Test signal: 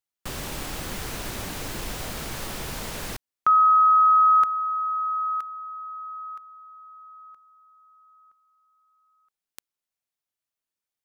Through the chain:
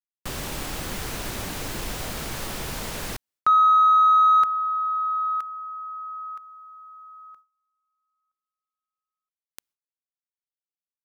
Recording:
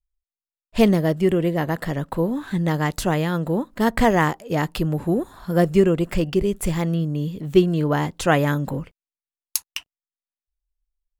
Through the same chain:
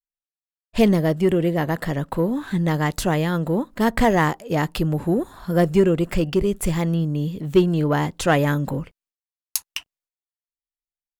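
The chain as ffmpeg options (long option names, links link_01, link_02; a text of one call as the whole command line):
ffmpeg -i in.wav -filter_complex "[0:a]agate=range=-28dB:threshold=-48dB:ratio=3:release=198:detection=rms,asplit=2[link_01][link_02];[link_02]asoftclip=type=tanh:threshold=-16dB,volume=-3.5dB[link_03];[link_01][link_03]amix=inputs=2:normalize=0,volume=-3dB" out.wav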